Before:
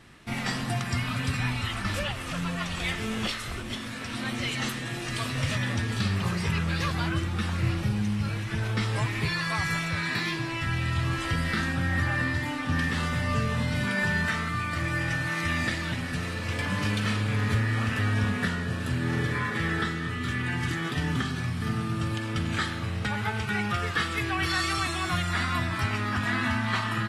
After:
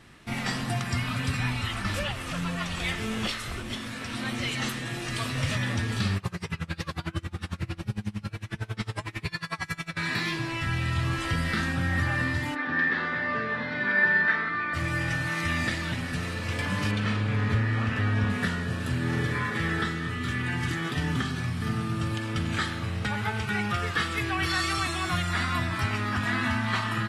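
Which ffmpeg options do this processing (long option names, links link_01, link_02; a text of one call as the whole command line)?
ffmpeg -i in.wav -filter_complex "[0:a]asettb=1/sr,asplit=3[link_01][link_02][link_03];[link_01]atrim=end=6.174[link_04];[link_02]atrim=start=6.17:end=9.97,asetpts=PTS-STARTPTS,afade=type=in:duration=0.004:curve=qsin,afade=type=out:start_time=3.796:duration=0.004:curve=qsin,aeval=exprs='val(0)*pow(10,-27*(0.5-0.5*cos(2*PI*11*n/s))/20)':channel_layout=same[link_05];[link_03]atrim=start=9.966[link_06];[link_04][link_05]acrossfade=duration=0.004:curve1=hsin:curve2=qsin[link_07];[link_07][link_06]acrossfade=duration=0.004:curve1=qsin:curve2=hsin,asplit=3[link_08][link_09][link_10];[link_08]afade=type=out:start_time=12.54:duration=0.02[link_11];[link_09]highpass=280,equalizer=frequency=350:width_type=q:width=4:gain=5,equalizer=frequency=1700:width_type=q:width=4:gain=9,equalizer=frequency=2900:width_type=q:width=4:gain=-9,lowpass=frequency=3800:width=0.5412,lowpass=frequency=3800:width=1.3066,afade=type=in:start_time=12.54:duration=0.02,afade=type=out:start_time=14.73:duration=0.02[link_12];[link_10]afade=type=in:start_time=14.73:duration=0.02[link_13];[link_11][link_12][link_13]amix=inputs=3:normalize=0,asettb=1/sr,asplit=3[link_14][link_15][link_16];[link_14]atrim=end=16.914[link_17];[link_15]atrim=start=16.91:end=18.3,asetpts=PTS-STARTPTS,afade=type=in:duration=0.004:curve=qsin,afade=type=out:start_time=1.386:duration=0.004:curve=qsin,aemphasis=mode=reproduction:type=50fm[link_18];[link_16]atrim=start=18.296[link_19];[link_17][link_18]acrossfade=duration=0.004:curve1=hsin:curve2=qsin[link_20];[link_20][link_19]acrossfade=duration=0.004:curve1=qsin:curve2=hsin" out.wav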